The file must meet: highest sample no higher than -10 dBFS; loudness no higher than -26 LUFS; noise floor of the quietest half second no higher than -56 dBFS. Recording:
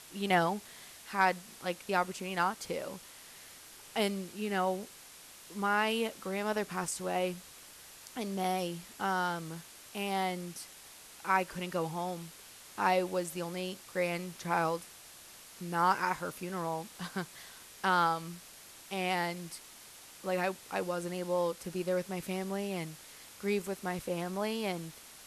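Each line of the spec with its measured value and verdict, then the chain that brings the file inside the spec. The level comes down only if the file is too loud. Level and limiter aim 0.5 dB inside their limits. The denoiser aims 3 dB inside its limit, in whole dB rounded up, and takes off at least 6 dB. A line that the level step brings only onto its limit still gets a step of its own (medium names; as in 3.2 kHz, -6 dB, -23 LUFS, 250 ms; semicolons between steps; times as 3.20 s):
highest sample -14.0 dBFS: pass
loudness -34.0 LUFS: pass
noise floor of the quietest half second -53 dBFS: fail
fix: noise reduction 6 dB, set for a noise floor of -53 dBFS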